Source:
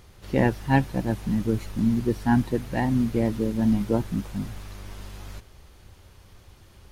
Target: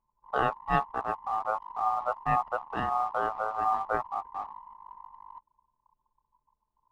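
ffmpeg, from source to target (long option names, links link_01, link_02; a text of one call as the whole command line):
ffmpeg -i in.wav -af "aeval=exprs='val(0)*sin(2*PI*980*n/s)':channel_layout=same,tiltshelf=frequency=1500:gain=4,anlmdn=6.31,volume=-5dB" out.wav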